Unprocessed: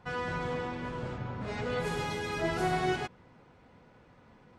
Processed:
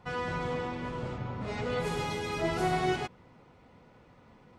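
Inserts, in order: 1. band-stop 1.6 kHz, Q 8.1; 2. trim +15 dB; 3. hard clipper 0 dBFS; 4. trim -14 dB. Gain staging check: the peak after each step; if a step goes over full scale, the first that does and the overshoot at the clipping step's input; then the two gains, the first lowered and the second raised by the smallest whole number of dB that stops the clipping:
-18.5 dBFS, -3.5 dBFS, -3.5 dBFS, -17.5 dBFS; nothing clips

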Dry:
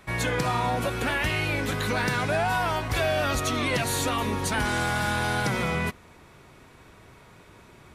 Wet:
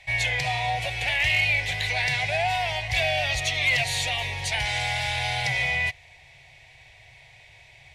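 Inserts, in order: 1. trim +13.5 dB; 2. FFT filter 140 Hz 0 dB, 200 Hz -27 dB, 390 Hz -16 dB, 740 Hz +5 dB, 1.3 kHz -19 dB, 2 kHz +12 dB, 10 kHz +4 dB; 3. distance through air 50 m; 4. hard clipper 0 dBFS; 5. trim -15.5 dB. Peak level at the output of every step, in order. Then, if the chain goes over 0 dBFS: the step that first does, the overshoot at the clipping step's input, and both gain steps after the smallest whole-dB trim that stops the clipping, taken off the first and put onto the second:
-1.0 dBFS, +6.0 dBFS, +5.5 dBFS, 0.0 dBFS, -15.5 dBFS; step 2, 5.5 dB; step 1 +7.5 dB, step 5 -9.5 dB

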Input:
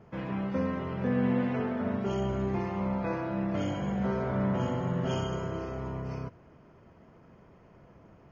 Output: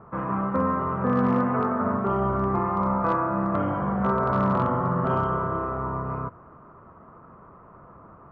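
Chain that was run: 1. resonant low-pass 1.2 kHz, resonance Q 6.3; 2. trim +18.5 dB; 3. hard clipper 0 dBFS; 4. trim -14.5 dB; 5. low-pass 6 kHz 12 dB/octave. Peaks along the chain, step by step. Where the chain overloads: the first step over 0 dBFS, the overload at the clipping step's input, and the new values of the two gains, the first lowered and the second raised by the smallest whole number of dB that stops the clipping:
-15.5 dBFS, +3.0 dBFS, 0.0 dBFS, -14.5 dBFS, -14.5 dBFS; step 2, 3.0 dB; step 2 +15.5 dB, step 4 -11.5 dB

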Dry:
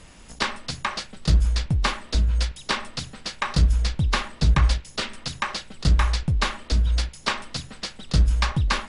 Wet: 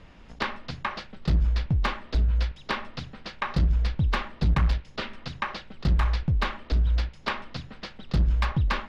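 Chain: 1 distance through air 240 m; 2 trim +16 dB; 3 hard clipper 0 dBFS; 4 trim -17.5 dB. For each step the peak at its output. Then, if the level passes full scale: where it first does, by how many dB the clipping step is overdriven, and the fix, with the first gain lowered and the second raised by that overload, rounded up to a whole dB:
-11.0 dBFS, +5.0 dBFS, 0.0 dBFS, -17.5 dBFS; step 2, 5.0 dB; step 2 +11 dB, step 4 -12.5 dB

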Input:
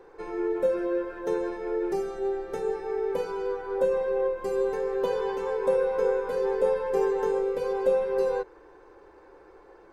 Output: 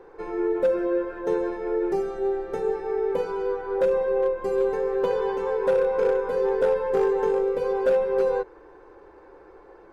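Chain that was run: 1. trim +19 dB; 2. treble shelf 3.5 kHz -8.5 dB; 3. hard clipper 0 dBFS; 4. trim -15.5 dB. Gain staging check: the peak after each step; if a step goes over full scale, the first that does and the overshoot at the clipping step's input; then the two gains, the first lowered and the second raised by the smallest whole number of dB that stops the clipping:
+6.0 dBFS, +6.0 dBFS, 0.0 dBFS, -15.5 dBFS; step 1, 6.0 dB; step 1 +13 dB, step 4 -9.5 dB

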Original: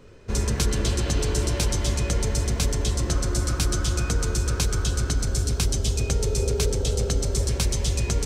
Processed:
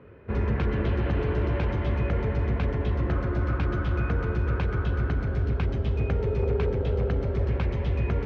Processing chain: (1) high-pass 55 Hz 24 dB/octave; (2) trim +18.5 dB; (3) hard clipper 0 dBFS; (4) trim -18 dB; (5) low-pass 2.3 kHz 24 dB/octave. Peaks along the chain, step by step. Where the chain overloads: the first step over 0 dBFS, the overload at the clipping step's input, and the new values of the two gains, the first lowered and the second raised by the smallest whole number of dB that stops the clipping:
-10.0 dBFS, +8.5 dBFS, 0.0 dBFS, -18.0 dBFS, -17.5 dBFS; step 2, 8.5 dB; step 2 +9.5 dB, step 4 -9 dB

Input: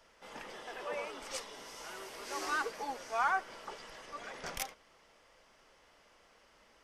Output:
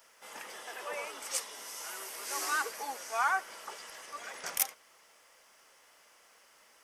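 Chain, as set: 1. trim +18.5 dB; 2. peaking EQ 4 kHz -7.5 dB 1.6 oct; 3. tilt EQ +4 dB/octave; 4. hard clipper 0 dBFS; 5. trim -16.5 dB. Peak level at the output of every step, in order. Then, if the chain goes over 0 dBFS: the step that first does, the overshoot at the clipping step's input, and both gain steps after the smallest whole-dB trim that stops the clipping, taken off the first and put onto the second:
-1.0 dBFS, -2.5 dBFS, +6.0 dBFS, 0.0 dBFS, -16.5 dBFS; step 3, 6.0 dB; step 1 +12.5 dB, step 5 -10.5 dB

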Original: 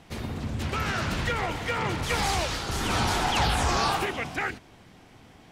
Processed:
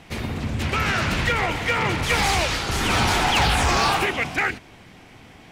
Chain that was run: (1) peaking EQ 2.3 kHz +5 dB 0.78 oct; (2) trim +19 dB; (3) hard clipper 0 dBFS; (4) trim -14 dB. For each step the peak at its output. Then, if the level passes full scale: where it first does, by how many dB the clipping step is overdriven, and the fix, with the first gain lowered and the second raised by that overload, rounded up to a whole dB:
-12.5 dBFS, +6.5 dBFS, 0.0 dBFS, -14.0 dBFS; step 2, 6.5 dB; step 2 +12 dB, step 4 -7 dB

